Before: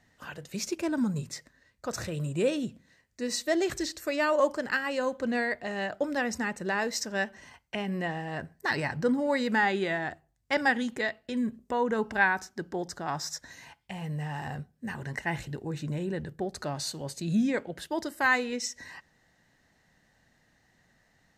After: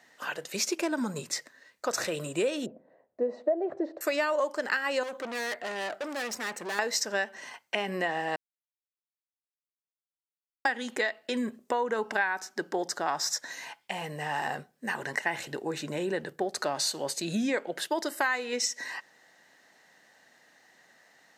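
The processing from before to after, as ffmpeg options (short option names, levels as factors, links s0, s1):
-filter_complex "[0:a]asettb=1/sr,asplit=3[s0][s1][s2];[s0]atrim=end=2.664[s3];[s1]atrim=start=2.66:end=4.01,asetpts=PTS-STARTPTS,afade=t=in:d=0.004:c=qsin,afade=t=out:st=1.346:d=0.004:c=qsin,lowpass=f=630:t=q:w=2.9[s4];[s2]atrim=start=4.006[s5];[s3][s4]acrossfade=d=0.004:c1=hsin:c2=qsin[s6];[s6][s5]acrossfade=d=0.004:c1=qsin:c2=hsin,asettb=1/sr,asplit=3[s7][s8][s9];[s7]atrim=end=5.034[s10];[s8]atrim=start=5.03:end=6.79,asetpts=PTS-STARTPTS,afade=t=in:d=0.004:c=qsin,afade=t=out:st=1.756:d=0.004:c=qsin,aeval=exprs='(tanh(79.4*val(0)+0.45)-tanh(0.45))/79.4':c=same[s11];[s9]atrim=start=6.786[s12];[s10][s11]acrossfade=d=0.004:c1=hsin:c2=qsin[s13];[s13][s12]acrossfade=d=0.004:c1=qsin:c2=hsin,asplit=3[s14][s15][s16];[s14]atrim=end=8.36,asetpts=PTS-STARTPTS,afade=t=out:st=8.356:d=0.004:c=hsin[s17];[s15]atrim=start=8.36:end=10.65,asetpts=PTS-STARTPTS,volume=0[s18];[s16]atrim=start=10.65,asetpts=PTS-STARTPTS,afade=t=in:d=0.004:c=hsin[s19];[s17][s18][s19]concat=n=3:v=0:a=1,highpass=400,acompressor=threshold=0.0224:ratio=6,volume=2.51"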